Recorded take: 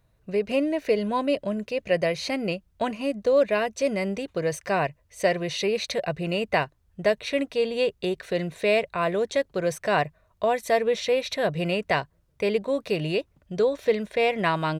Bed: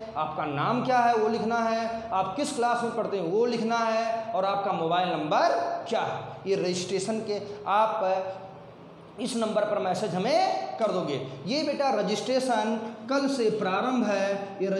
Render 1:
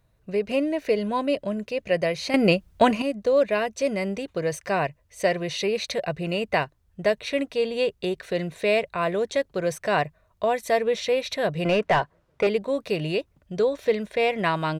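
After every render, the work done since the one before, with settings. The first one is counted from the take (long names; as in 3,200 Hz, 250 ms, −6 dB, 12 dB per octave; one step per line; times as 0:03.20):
0:02.34–0:03.02: clip gain +9 dB
0:11.65–0:12.47: mid-hump overdrive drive 20 dB, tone 1,100 Hz, clips at −9 dBFS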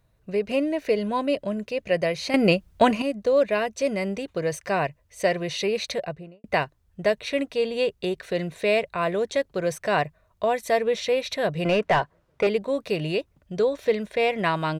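0:05.87–0:06.44: fade out and dull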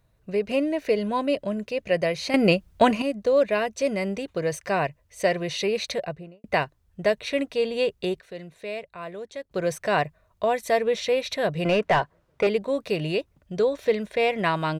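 0:08.20–0:09.51: clip gain −11.5 dB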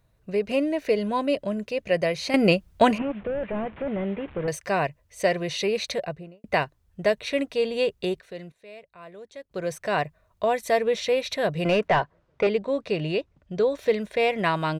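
0:02.98–0:04.48: linear delta modulator 16 kbit/s, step −40 dBFS
0:08.52–0:10.48: fade in, from −14.5 dB
0:11.88–0:13.70: high-frequency loss of the air 76 metres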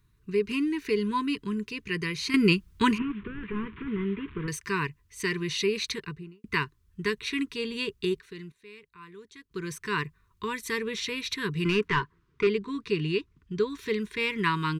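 elliptic band-stop filter 420–1,000 Hz, stop band 40 dB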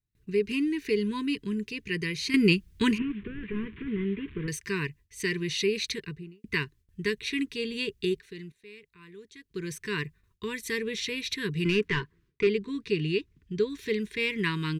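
flat-topped bell 1,000 Hz −10 dB 1.2 octaves
noise gate with hold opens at −56 dBFS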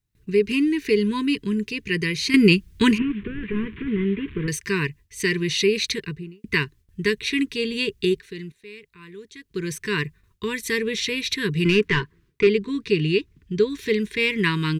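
level +7 dB
brickwall limiter −3 dBFS, peak gain reduction 2 dB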